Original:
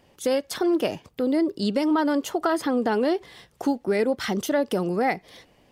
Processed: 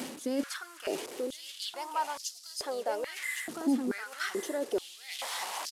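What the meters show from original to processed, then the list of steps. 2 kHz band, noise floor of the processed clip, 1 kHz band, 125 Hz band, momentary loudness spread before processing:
−5.0 dB, −50 dBFS, −8.0 dB, below −20 dB, 5 LU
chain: linear delta modulator 64 kbit/s, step −34 dBFS
high-shelf EQ 5,100 Hz +7.5 dB
reversed playback
downward compressor 12 to 1, threshold −34 dBFS, peak gain reduction 16.5 dB
reversed playback
gain on a spectral selection 0:03.23–0:03.49, 2,100–6,800 Hz −12 dB
on a send: single-tap delay 1,114 ms −5.5 dB
on the sum: high-pass on a step sequencer 2.3 Hz 250–5,000 Hz

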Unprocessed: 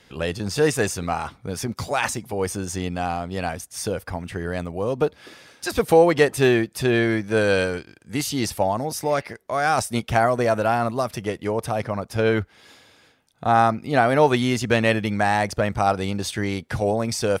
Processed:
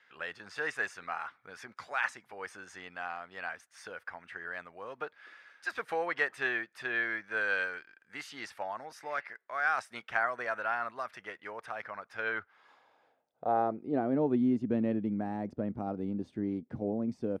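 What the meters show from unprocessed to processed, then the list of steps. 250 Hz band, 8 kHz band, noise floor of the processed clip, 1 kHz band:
−9.5 dB, −25.0 dB, −72 dBFS, −13.0 dB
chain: band-pass filter sweep 1,600 Hz → 260 Hz, 0:12.24–0:14.21
level −3 dB

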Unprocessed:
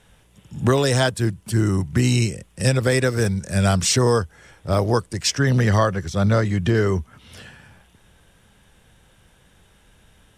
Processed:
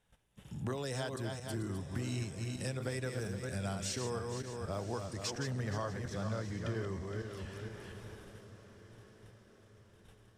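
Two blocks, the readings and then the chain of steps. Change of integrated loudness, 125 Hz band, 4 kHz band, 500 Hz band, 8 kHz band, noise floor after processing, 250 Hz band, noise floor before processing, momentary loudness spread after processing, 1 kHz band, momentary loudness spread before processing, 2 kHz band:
−19.0 dB, −18.5 dB, −18.0 dB, −18.0 dB, −18.0 dB, −63 dBFS, −18.0 dB, −56 dBFS, 16 LU, −18.0 dB, 7 LU, −18.5 dB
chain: feedback delay that plays each chunk backwards 233 ms, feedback 46%, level −6 dB
noise gate −50 dBFS, range −17 dB
parametric band 770 Hz +2 dB
downward compressor 2.5 to 1, threshold −39 dBFS, peak gain reduction 18 dB
on a send: feedback delay with all-pass diffusion 1,120 ms, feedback 46%, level −14 dB
on the sum: level −4.5 dB

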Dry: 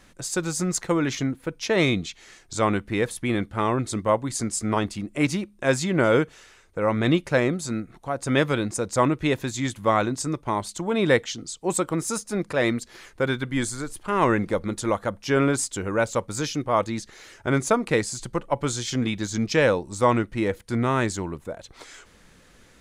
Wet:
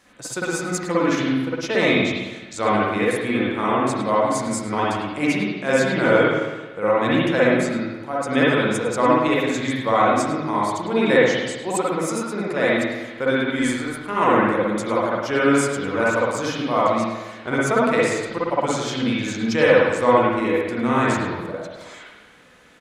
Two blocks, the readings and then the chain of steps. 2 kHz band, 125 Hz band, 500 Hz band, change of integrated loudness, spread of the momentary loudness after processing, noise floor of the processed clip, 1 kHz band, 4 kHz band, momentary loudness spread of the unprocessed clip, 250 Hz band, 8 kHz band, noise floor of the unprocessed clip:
+6.0 dB, −1.0 dB, +5.0 dB, +4.0 dB, 9 LU, −41 dBFS, +6.0 dB, +3.0 dB, 10 LU, +3.5 dB, −2.0 dB, −55 dBFS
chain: high-pass filter 250 Hz 6 dB per octave
single-tap delay 105 ms −16 dB
spring reverb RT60 1.2 s, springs 53/57 ms, chirp 35 ms, DRR −7 dB
level −2 dB

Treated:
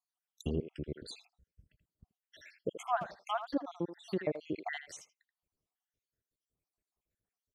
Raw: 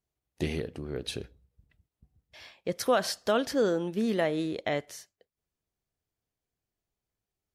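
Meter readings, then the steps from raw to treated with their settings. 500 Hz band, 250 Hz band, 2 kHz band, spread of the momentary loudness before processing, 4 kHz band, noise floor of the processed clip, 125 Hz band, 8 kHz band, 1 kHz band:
−10.5 dB, −8.0 dB, −8.0 dB, 12 LU, −12.5 dB, below −85 dBFS, −5.0 dB, −12.0 dB, −3.0 dB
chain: time-frequency cells dropped at random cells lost 73%
treble cut that deepens with the level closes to 1,000 Hz, closed at −29.5 dBFS
far-end echo of a speakerphone 80 ms, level −10 dB

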